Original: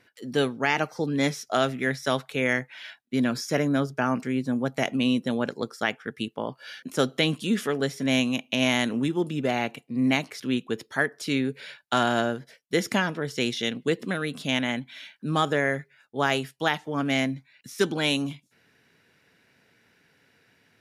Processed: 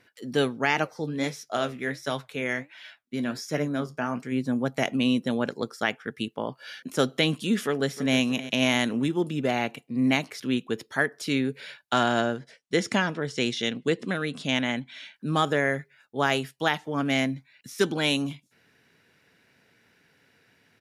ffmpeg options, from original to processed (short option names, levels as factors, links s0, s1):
-filter_complex "[0:a]asplit=3[s0][s1][s2];[s0]afade=t=out:st=0.84:d=0.02[s3];[s1]flanger=delay=6.5:depth=6.8:regen=65:speed=1.4:shape=sinusoidal,afade=t=in:st=0.84:d=0.02,afade=t=out:st=4.31:d=0.02[s4];[s2]afade=t=in:st=4.31:d=0.02[s5];[s3][s4][s5]amix=inputs=3:normalize=0,asplit=2[s6][s7];[s7]afade=t=in:st=7.57:d=0.01,afade=t=out:st=8.18:d=0.01,aecho=0:1:310|620|930:0.177828|0.0622398|0.0217839[s8];[s6][s8]amix=inputs=2:normalize=0,asettb=1/sr,asplit=3[s9][s10][s11];[s9]atrim=end=11.934[s12];[s10]atrim=start=11.93:end=15.14,asetpts=PTS-STARTPTS,afade=t=in:d=0.004:c=qsin,afade=t=out:st=3.206:d=0.004:c=qsin,lowpass=f=9300:w=0.5412,lowpass=f=9300:w=1.3066[s13];[s11]atrim=start=15.136[s14];[s12][s13]acrossfade=d=0.004:c1=hsin:c2=qsin[s15];[s15][s14]acrossfade=d=0.004:c1=qsin:c2=hsin"